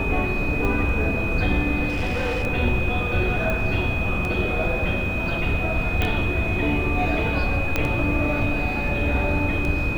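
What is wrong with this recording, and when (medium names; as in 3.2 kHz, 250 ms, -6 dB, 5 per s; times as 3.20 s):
tick 33 1/3 rpm -15 dBFS
whine 2.5 kHz -27 dBFS
1.88–2.45 s: clipped -20.5 dBFS
3.50 s: pop -14 dBFS
6.02 s: pop -11 dBFS
7.76 s: pop -7 dBFS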